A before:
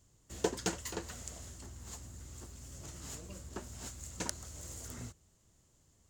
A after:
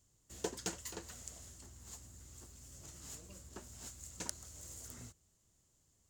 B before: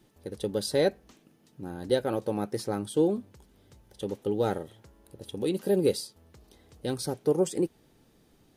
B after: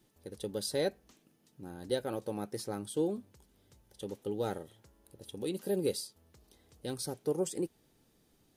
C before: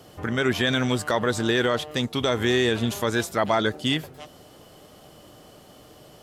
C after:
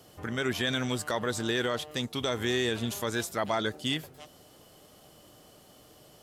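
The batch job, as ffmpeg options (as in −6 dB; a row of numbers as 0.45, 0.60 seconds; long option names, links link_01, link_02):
-af "highshelf=frequency=4400:gain=6.5,volume=-7.5dB"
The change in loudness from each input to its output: −4.5, −7.0, −6.5 LU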